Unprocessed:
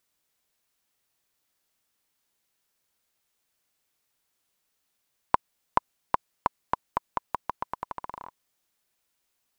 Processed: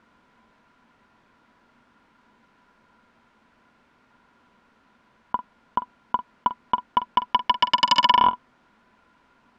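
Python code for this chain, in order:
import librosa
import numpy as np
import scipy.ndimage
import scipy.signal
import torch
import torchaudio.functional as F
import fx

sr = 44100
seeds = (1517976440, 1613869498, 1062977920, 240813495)

y = scipy.signal.sosfilt(scipy.signal.butter(2, 1800.0, 'lowpass', fs=sr, output='sos'), x)
y = fx.over_compress(y, sr, threshold_db=-35.0, ratio=-1.0)
y = fx.small_body(y, sr, hz=(230.0, 990.0, 1400.0), ring_ms=50, db=12)
y = fx.fold_sine(y, sr, drive_db=12, ceiling_db=-10.5)
y = fx.doubler(y, sr, ms=47.0, db=-13.5)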